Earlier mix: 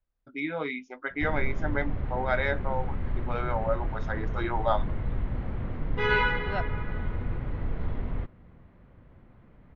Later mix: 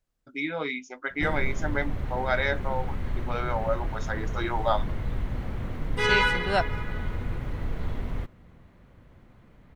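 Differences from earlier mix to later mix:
second voice +8.0 dB; background: add treble shelf 4.2 kHz +6.5 dB; master: remove distance through air 230 m

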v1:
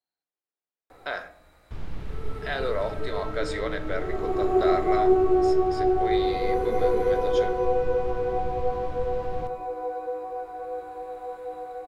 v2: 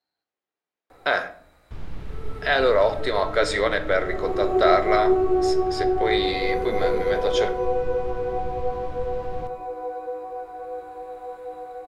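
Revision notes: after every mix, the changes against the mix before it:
speech +10.0 dB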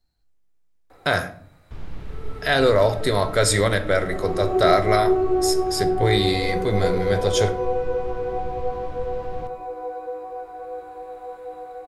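speech: remove band-pass 410–3700 Hz

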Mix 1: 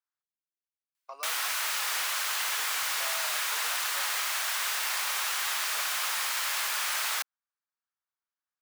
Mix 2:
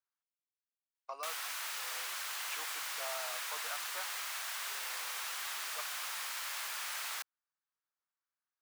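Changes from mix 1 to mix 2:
background -7.0 dB; reverb: off

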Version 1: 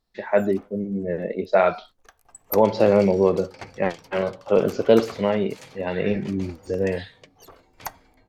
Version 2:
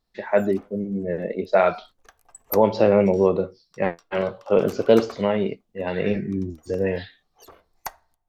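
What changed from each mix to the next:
second sound: muted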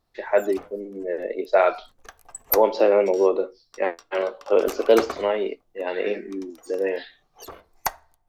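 speech: add steep high-pass 280 Hz 36 dB/octave; background +7.5 dB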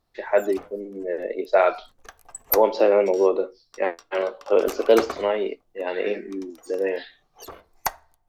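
no change

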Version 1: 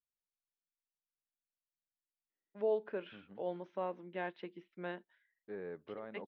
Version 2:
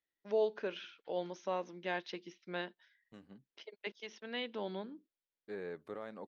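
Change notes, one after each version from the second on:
first voice: entry -2.30 s; master: remove distance through air 490 m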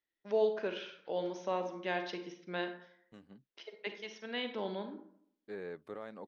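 reverb: on, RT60 0.65 s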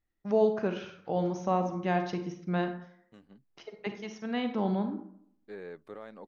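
first voice: remove cabinet simulation 470–5500 Hz, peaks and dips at 760 Hz -10 dB, 1.2 kHz -9 dB, 3.4 kHz +5 dB

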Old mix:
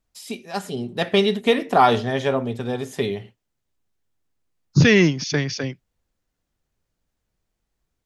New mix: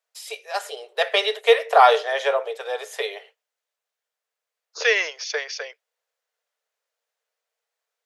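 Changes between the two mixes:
first voice +4.0 dB; master: add rippled Chebyshev high-pass 440 Hz, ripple 3 dB

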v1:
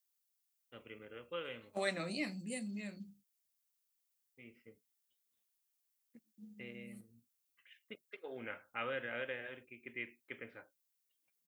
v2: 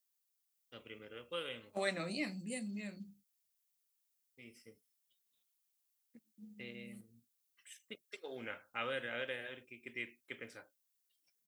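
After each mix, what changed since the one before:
first voice: remove low-pass 2.8 kHz 24 dB/octave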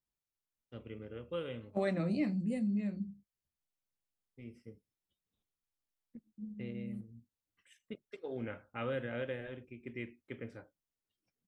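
master: add tilt EQ -4.5 dB/octave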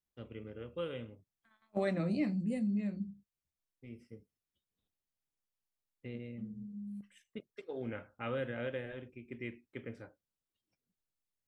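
first voice: entry -0.55 s

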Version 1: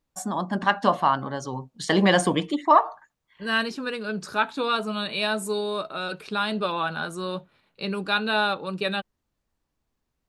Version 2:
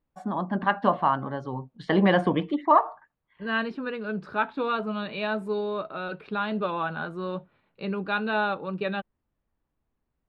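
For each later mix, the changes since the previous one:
master: add distance through air 430 m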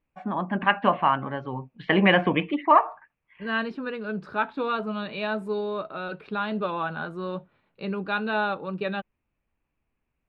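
first voice: add resonant low-pass 2.5 kHz, resonance Q 6

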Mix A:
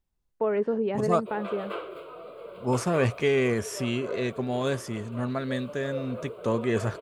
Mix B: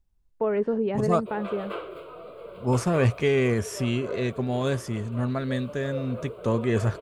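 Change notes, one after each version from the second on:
master: add bass shelf 110 Hz +12 dB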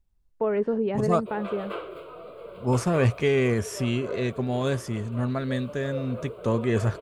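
no change

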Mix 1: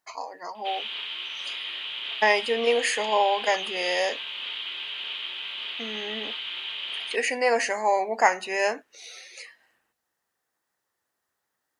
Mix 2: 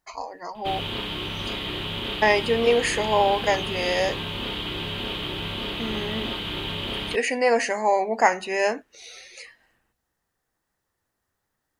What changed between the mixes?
background: remove band-pass filter 2.7 kHz, Q 1.3; master: remove high-pass 500 Hz 6 dB/octave

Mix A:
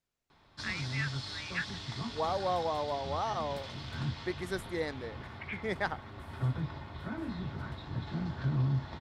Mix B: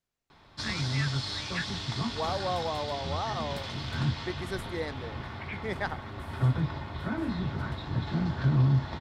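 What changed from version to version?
background +6.5 dB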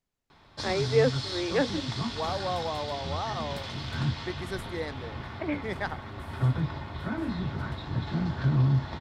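first voice: remove steep high-pass 1.3 kHz

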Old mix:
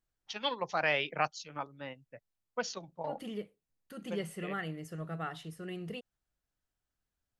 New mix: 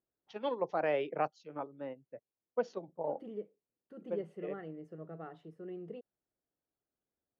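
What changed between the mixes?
first voice +6.0 dB; master: add band-pass filter 400 Hz, Q 1.4

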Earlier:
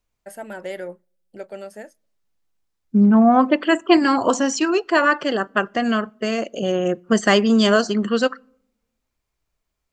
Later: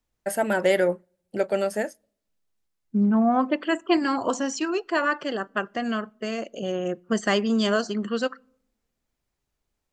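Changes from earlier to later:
first voice +10.5 dB; second voice -7.0 dB

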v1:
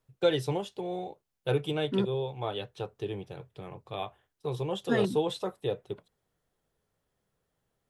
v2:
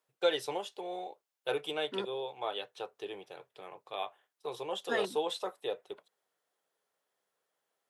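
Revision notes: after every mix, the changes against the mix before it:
master: add high-pass 540 Hz 12 dB/octave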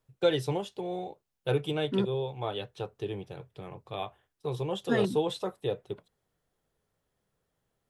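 master: remove high-pass 540 Hz 12 dB/octave

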